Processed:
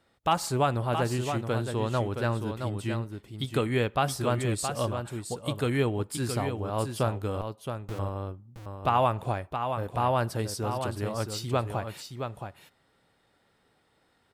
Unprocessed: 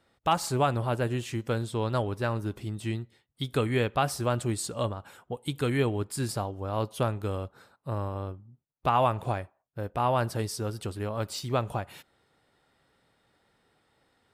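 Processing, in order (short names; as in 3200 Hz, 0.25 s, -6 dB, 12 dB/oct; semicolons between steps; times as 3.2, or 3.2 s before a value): 7.41–7.99 Schmitt trigger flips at -29 dBFS; echo 0.67 s -7 dB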